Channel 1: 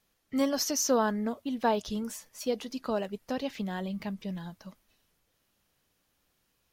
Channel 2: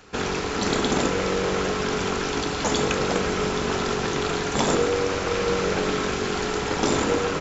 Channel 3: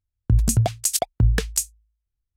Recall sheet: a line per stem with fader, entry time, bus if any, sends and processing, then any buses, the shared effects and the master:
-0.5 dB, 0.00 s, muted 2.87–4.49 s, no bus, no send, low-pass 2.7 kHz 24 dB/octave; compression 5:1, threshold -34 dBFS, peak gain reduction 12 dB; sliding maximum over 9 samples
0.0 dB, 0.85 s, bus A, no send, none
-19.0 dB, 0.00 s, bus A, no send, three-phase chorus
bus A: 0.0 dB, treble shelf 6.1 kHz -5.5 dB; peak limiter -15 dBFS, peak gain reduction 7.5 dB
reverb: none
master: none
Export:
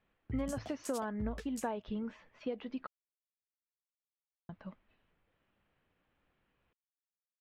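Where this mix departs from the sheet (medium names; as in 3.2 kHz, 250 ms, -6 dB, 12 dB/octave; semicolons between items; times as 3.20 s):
stem 1: missing sliding maximum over 9 samples; stem 2: muted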